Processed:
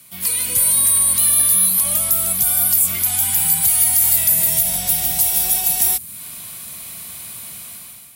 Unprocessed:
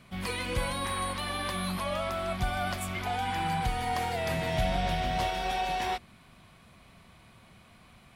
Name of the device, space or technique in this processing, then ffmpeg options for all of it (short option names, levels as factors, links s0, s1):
FM broadcast chain: -filter_complex "[0:a]asettb=1/sr,asplit=3[s0][s1][s2];[s0]atrim=end=3.024[s3];[s1]atrim=start=3.02:end=4.29,asetpts=PTS-STARTPTS,afade=t=in:d=0.004:c=qsin,afade=t=out:st=1.266:d=0.004:c=qsin,equalizer=f=470:w=1.2:g=-13.5[s4];[s2]atrim=start=4.286[s5];[s3][s4]acrossfade=d=0.004:c1=hsin:c2=qsin[s6];[s6][s5]acrossfade=d=0.004:c1=qsin:c2=hsin,highpass=67,dynaudnorm=f=250:g=5:m=4.47,acrossover=split=210|7400[s7][s8][s9];[s7]acompressor=threshold=0.0316:ratio=4[s10];[s8]acompressor=threshold=0.0224:ratio=4[s11];[s9]acompressor=threshold=0.0158:ratio=4[s12];[s10][s11][s12]amix=inputs=3:normalize=0,aemphasis=mode=production:type=75fm,alimiter=limit=0.178:level=0:latency=1:release=45,asoftclip=type=hard:threshold=0.126,lowpass=f=15000:w=0.5412,lowpass=f=15000:w=1.3066,aemphasis=mode=production:type=75fm,volume=0.75"